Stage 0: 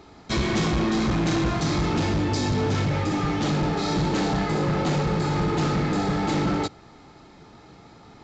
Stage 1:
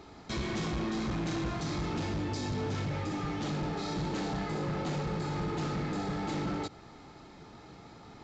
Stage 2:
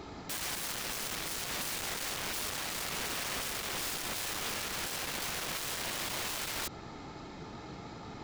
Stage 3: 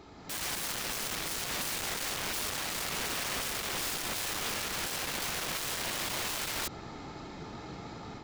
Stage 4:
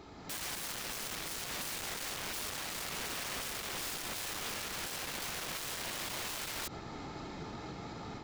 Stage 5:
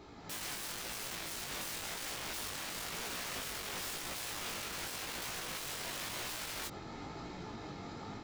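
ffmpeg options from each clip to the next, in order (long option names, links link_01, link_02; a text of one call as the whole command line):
ffmpeg -i in.wav -af "alimiter=level_in=3dB:limit=-24dB:level=0:latency=1:release=73,volume=-3dB,volume=-2.5dB" out.wav
ffmpeg -i in.wav -af "aeval=exprs='(mod(66.8*val(0)+1,2)-1)/66.8':channel_layout=same,volume=5.5dB" out.wav
ffmpeg -i in.wav -af "dynaudnorm=framelen=190:gausssize=3:maxgain=9dB,volume=-7dB" out.wav
ffmpeg -i in.wav -af "alimiter=level_in=10dB:limit=-24dB:level=0:latency=1:release=67,volume=-10dB" out.wav
ffmpeg -i in.wav -af "flanger=delay=16.5:depth=5.1:speed=0.95,volume=1.5dB" out.wav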